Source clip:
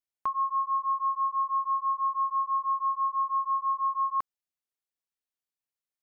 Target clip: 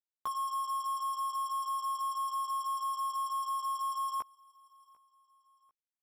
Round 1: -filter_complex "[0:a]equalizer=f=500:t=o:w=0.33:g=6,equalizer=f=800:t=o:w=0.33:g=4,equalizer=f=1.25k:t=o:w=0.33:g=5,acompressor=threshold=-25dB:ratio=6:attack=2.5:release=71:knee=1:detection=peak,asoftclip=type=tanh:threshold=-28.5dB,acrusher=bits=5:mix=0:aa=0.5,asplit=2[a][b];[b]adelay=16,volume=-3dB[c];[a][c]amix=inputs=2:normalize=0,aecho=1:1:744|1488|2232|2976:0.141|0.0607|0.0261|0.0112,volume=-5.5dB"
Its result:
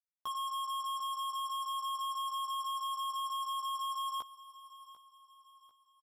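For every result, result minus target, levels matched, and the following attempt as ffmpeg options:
soft clip: distortion +11 dB; echo-to-direct +8.5 dB
-filter_complex "[0:a]equalizer=f=500:t=o:w=0.33:g=6,equalizer=f=800:t=o:w=0.33:g=4,equalizer=f=1.25k:t=o:w=0.33:g=5,acompressor=threshold=-25dB:ratio=6:attack=2.5:release=71:knee=1:detection=peak,asoftclip=type=tanh:threshold=-21dB,acrusher=bits=5:mix=0:aa=0.5,asplit=2[a][b];[b]adelay=16,volume=-3dB[c];[a][c]amix=inputs=2:normalize=0,aecho=1:1:744|1488|2232|2976:0.141|0.0607|0.0261|0.0112,volume=-5.5dB"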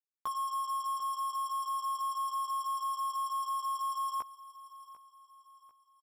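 echo-to-direct +8.5 dB
-filter_complex "[0:a]equalizer=f=500:t=o:w=0.33:g=6,equalizer=f=800:t=o:w=0.33:g=4,equalizer=f=1.25k:t=o:w=0.33:g=5,acompressor=threshold=-25dB:ratio=6:attack=2.5:release=71:knee=1:detection=peak,asoftclip=type=tanh:threshold=-21dB,acrusher=bits=5:mix=0:aa=0.5,asplit=2[a][b];[b]adelay=16,volume=-3dB[c];[a][c]amix=inputs=2:normalize=0,aecho=1:1:744|1488:0.0531|0.0228,volume=-5.5dB"

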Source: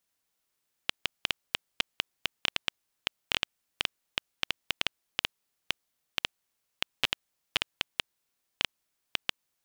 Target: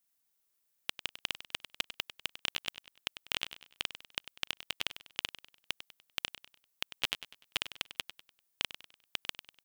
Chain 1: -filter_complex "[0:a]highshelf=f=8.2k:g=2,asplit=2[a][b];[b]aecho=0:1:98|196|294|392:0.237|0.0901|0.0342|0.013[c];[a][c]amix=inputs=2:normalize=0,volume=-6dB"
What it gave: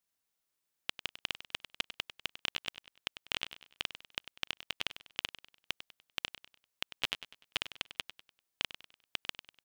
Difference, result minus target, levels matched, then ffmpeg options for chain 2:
8000 Hz band -3.0 dB
-filter_complex "[0:a]highshelf=f=8.2k:g=11.5,asplit=2[a][b];[b]aecho=0:1:98|196|294|392:0.237|0.0901|0.0342|0.013[c];[a][c]amix=inputs=2:normalize=0,volume=-6dB"

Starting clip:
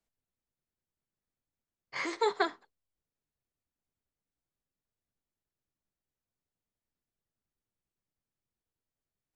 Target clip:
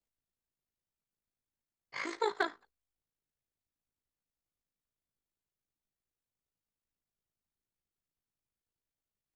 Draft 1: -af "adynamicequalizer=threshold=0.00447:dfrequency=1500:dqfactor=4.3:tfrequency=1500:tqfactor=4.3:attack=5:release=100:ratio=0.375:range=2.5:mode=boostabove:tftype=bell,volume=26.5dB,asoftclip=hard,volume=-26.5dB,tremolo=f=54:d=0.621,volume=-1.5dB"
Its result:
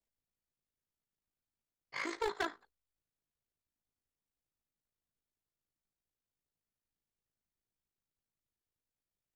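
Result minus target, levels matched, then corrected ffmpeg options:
overloaded stage: distortion +16 dB
-af "adynamicequalizer=threshold=0.00447:dfrequency=1500:dqfactor=4.3:tfrequency=1500:tqfactor=4.3:attack=5:release=100:ratio=0.375:range=2.5:mode=boostabove:tftype=bell,volume=18dB,asoftclip=hard,volume=-18dB,tremolo=f=54:d=0.621,volume=-1.5dB"

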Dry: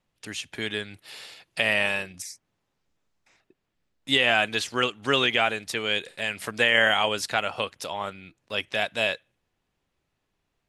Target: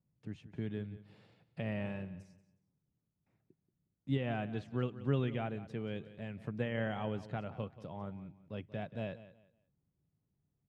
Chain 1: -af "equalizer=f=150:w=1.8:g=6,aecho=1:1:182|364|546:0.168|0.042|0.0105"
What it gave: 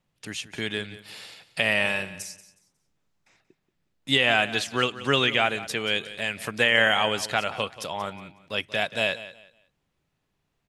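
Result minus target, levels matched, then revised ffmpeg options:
125 Hz band -14.5 dB
-af "bandpass=f=120:t=q:w=0.98:csg=0,equalizer=f=150:w=1.8:g=6,aecho=1:1:182|364|546:0.168|0.042|0.0105"

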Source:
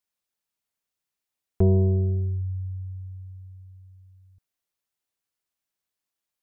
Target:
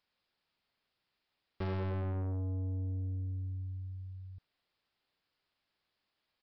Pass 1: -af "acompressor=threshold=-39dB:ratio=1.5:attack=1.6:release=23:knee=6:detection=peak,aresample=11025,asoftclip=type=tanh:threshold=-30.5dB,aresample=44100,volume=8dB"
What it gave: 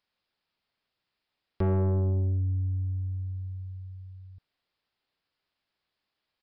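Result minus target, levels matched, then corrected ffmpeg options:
soft clip: distortion -7 dB
-af "acompressor=threshold=-39dB:ratio=1.5:attack=1.6:release=23:knee=6:detection=peak,aresample=11025,asoftclip=type=tanh:threshold=-42dB,aresample=44100,volume=8dB"

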